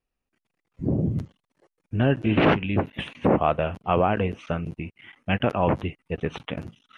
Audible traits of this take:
background noise floor −85 dBFS
spectral slope −6.0 dB per octave

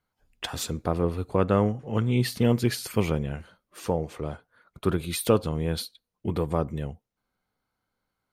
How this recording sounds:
background noise floor −83 dBFS
spectral slope −6.0 dB per octave

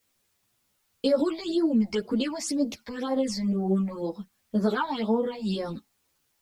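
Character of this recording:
phaser sweep stages 8, 2 Hz, lowest notch 380–3,000 Hz
a quantiser's noise floor 12 bits, dither triangular
a shimmering, thickened sound

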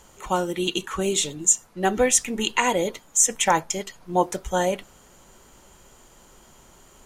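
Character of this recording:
background noise floor −53 dBFS
spectral slope −2.0 dB per octave

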